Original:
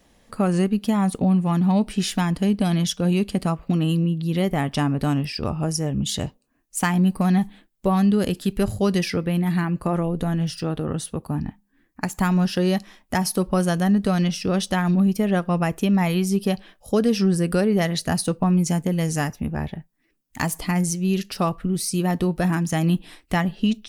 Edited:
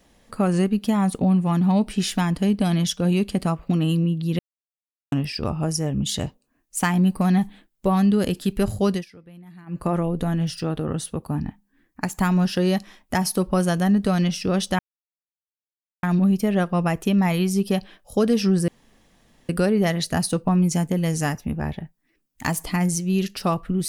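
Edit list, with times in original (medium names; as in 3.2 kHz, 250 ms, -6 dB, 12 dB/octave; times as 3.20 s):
4.39–5.12 s: mute
8.90–9.81 s: dip -22.5 dB, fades 0.15 s
14.79 s: insert silence 1.24 s
17.44 s: insert room tone 0.81 s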